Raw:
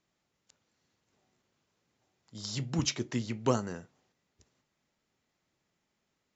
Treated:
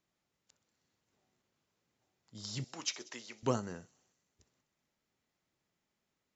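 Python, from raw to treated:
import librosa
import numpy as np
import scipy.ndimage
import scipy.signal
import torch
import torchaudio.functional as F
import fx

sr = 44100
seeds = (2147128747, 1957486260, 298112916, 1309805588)

p1 = fx.highpass(x, sr, hz=600.0, slope=12, at=(2.64, 3.43))
p2 = p1 + fx.echo_wet_highpass(p1, sr, ms=63, feedback_pct=76, hz=5100.0, wet_db=-15, dry=0)
y = p2 * 10.0 ** (-4.5 / 20.0)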